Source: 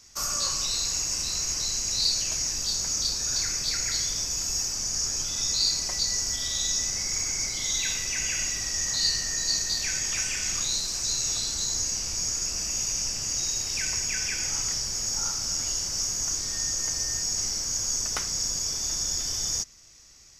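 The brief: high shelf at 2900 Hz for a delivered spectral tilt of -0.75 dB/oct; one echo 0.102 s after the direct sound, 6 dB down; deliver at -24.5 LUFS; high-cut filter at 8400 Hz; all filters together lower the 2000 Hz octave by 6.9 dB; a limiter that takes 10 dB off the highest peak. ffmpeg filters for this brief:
-af "lowpass=8.4k,equalizer=f=2k:t=o:g=-6,highshelf=f=2.9k:g=-6.5,alimiter=level_in=2.5dB:limit=-24dB:level=0:latency=1,volume=-2.5dB,aecho=1:1:102:0.501,volume=8.5dB"

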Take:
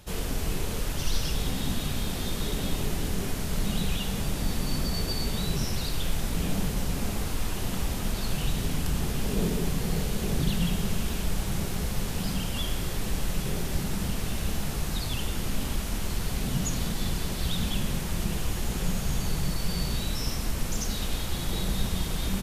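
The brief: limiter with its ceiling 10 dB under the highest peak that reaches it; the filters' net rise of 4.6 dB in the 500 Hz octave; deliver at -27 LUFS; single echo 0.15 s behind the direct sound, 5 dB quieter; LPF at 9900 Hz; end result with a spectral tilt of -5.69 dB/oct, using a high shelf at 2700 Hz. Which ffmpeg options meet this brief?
-af "lowpass=9.9k,equalizer=f=500:t=o:g=6,highshelf=f=2.7k:g=-7,alimiter=limit=-23dB:level=0:latency=1,aecho=1:1:150:0.562,volume=6dB"

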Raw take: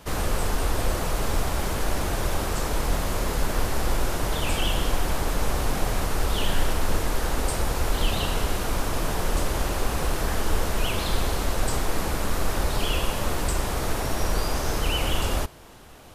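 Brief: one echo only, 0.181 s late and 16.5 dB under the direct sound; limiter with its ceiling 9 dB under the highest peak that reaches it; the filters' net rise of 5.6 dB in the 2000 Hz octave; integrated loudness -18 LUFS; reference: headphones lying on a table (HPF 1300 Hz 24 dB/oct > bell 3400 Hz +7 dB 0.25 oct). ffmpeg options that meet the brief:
-af "equalizer=f=2k:t=o:g=7.5,alimiter=limit=-18.5dB:level=0:latency=1,highpass=f=1.3k:w=0.5412,highpass=f=1.3k:w=1.3066,equalizer=f=3.4k:t=o:w=0.25:g=7,aecho=1:1:181:0.15,volume=13dB"

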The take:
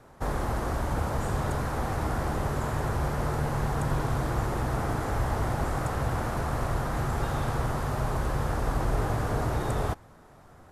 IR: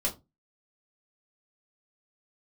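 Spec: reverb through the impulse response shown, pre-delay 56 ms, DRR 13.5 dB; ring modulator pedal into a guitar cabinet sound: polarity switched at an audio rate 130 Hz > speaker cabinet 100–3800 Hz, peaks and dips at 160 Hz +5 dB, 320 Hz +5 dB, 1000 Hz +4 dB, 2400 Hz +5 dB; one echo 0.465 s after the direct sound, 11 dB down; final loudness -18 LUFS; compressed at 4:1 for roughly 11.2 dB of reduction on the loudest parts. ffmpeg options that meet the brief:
-filter_complex "[0:a]acompressor=threshold=-37dB:ratio=4,aecho=1:1:465:0.282,asplit=2[a][b];[1:a]atrim=start_sample=2205,adelay=56[c];[b][c]afir=irnorm=-1:irlink=0,volume=-19.5dB[d];[a][d]amix=inputs=2:normalize=0,aeval=exprs='val(0)*sgn(sin(2*PI*130*n/s))':c=same,highpass=100,equalizer=f=160:t=q:w=4:g=5,equalizer=f=320:t=q:w=4:g=5,equalizer=f=1k:t=q:w=4:g=4,equalizer=f=2.4k:t=q:w=4:g=5,lowpass=f=3.8k:w=0.5412,lowpass=f=3.8k:w=1.3066,volume=19dB"

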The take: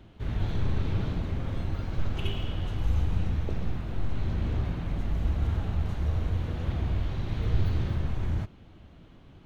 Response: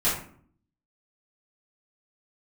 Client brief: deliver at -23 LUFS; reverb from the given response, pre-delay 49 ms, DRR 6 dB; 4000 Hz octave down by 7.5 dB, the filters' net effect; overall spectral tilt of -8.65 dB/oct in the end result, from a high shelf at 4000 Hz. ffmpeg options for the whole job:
-filter_complex "[0:a]highshelf=f=4k:g=-4.5,equalizer=f=4k:t=o:g=-8.5,asplit=2[a][b];[1:a]atrim=start_sample=2205,adelay=49[c];[b][c]afir=irnorm=-1:irlink=0,volume=-18.5dB[d];[a][d]amix=inputs=2:normalize=0,volume=7dB"

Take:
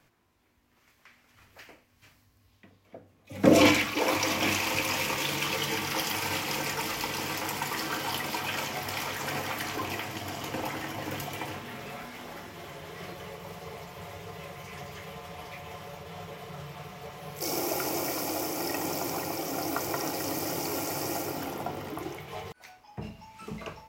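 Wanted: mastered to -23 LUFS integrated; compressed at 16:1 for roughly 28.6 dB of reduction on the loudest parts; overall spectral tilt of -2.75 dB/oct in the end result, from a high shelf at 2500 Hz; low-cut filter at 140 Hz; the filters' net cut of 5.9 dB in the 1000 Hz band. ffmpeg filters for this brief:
-af "highpass=140,equalizer=f=1k:t=o:g=-8.5,highshelf=f=2.5k:g=3.5,acompressor=threshold=-44dB:ratio=16,volume=23.5dB"

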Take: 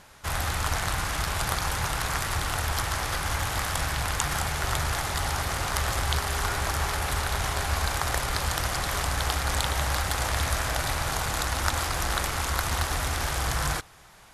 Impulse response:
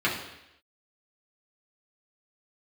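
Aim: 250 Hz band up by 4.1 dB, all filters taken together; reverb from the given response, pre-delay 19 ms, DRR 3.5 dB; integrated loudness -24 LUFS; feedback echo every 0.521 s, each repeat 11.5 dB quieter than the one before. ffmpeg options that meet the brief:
-filter_complex "[0:a]equalizer=f=250:t=o:g=6,aecho=1:1:521|1042|1563:0.266|0.0718|0.0194,asplit=2[a][b];[1:a]atrim=start_sample=2205,adelay=19[c];[b][c]afir=irnorm=-1:irlink=0,volume=-17dB[d];[a][d]amix=inputs=2:normalize=0,volume=2dB"

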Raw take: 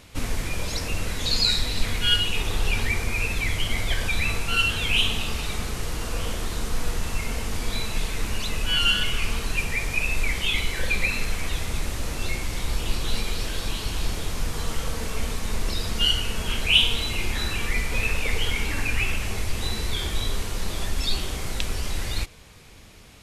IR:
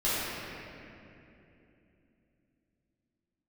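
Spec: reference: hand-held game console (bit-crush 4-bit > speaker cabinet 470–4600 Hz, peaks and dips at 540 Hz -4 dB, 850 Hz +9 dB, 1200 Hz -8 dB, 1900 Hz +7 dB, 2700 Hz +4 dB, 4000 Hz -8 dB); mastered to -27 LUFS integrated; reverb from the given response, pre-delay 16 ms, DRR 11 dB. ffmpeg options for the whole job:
-filter_complex "[0:a]asplit=2[a][b];[1:a]atrim=start_sample=2205,adelay=16[c];[b][c]afir=irnorm=-1:irlink=0,volume=-23dB[d];[a][d]amix=inputs=2:normalize=0,acrusher=bits=3:mix=0:aa=0.000001,highpass=470,equalizer=f=540:t=q:w=4:g=-4,equalizer=f=850:t=q:w=4:g=9,equalizer=f=1.2k:t=q:w=4:g=-8,equalizer=f=1.9k:t=q:w=4:g=7,equalizer=f=2.7k:t=q:w=4:g=4,equalizer=f=4k:t=q:w=4:g=-8,lowpass=f=4.6k:w=0.5412,lowpass=f=4.6k:w=1.3066,volume=-3.5dB"

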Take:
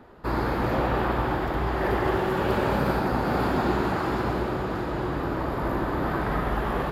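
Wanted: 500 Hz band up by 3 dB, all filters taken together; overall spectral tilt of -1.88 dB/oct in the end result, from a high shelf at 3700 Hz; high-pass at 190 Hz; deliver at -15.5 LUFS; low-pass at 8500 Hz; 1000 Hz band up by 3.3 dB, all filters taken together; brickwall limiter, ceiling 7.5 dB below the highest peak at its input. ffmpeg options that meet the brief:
-af "highpass=190,lowpass=8.5k,equalizer=f=500:t=o:g=3.5,equalizer=f=1k:t=o:g=3.5,highshelf=f=3.7k:g=-6.5,volume=12dB,alimiter=limit=-6dB:level=0:latency=1"

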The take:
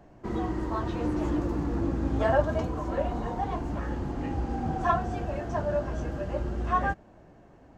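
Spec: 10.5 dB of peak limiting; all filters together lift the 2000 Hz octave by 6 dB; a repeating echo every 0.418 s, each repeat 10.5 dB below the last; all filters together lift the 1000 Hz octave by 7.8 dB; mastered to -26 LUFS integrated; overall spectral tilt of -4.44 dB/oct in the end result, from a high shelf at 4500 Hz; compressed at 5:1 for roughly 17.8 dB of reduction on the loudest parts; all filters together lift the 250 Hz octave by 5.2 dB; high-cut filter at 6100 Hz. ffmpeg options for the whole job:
-af "lowpass=6.1k,equalizer=f=250:t=o:g=6,equalizer=f=1k:t=o:g=8.5,equalizer=f=2k:t=o:g=3.5,highshelf=f=4.5k:g=4,acompressor=threshold=-33dB:ratio=5,alimiter=level_in=8dB:limit=-24dB:level=0:latency=1,volume=-8dB,aecho=1:1:418|836|1254:0.299|0.0896|0.0269,volume=14.5dB"

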